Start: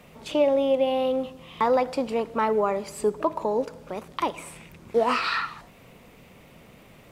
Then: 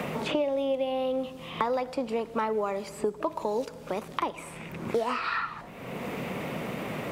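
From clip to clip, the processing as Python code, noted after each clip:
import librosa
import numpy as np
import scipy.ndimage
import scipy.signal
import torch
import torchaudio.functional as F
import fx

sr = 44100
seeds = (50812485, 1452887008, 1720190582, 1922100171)

y = fx.band_squash(x, sr, depth_pct=100)
y = y * 10.0 ** (-5.0 / 20.0)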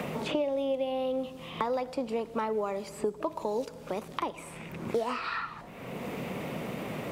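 y = fx.dynamic_eq(x, sr, hz=1600.0, q=0.8, threshold_db=-44.0, ratio=4.0, max_db=-3)
y = y * 10.0 ** (-1.5 / 20.0)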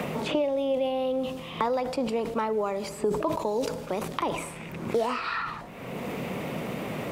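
y = fx.sustainer(x, sr, db_per_s=55.0)
y = y * 10.0 ** (3.0 / 20.0)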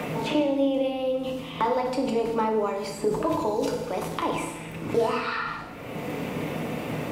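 y = fx.rev_fdn(x, sr, rt60_s=0.9, lf_ratio=1.4, hf_ratio=0.95, size_ms=20.0, drr_db=1.0)
y = y * 10.0 ** (-1.0 / 20.0)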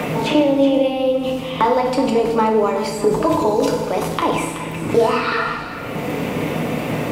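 y = x + 10.0 ** (-12.5 / 20.0) * np.pad(x, (int(375 * sr / 1000.0), 0))[:len(x)]
y = y * 10.0 ** (8.5 / 20.0)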